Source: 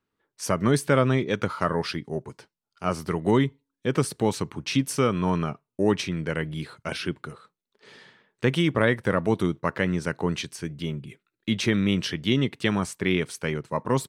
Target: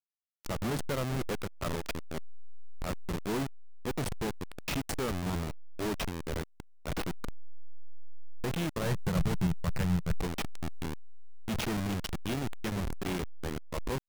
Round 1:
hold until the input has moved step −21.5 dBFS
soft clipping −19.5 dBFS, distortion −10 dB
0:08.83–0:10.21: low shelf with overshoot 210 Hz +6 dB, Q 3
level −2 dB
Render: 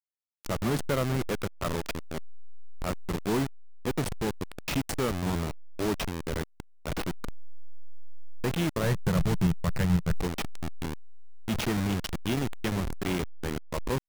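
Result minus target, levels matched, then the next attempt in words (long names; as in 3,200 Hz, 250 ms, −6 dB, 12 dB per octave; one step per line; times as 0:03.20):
soft clipping: distortion −5 dB
hold until the input has moved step −21.5 dBFS
soft clipping −27 dBFS, distortion −5 dB
0:08.83–0:10.21: low shelf with overshoot 210 Hz +6 dB, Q 3
level −2 dB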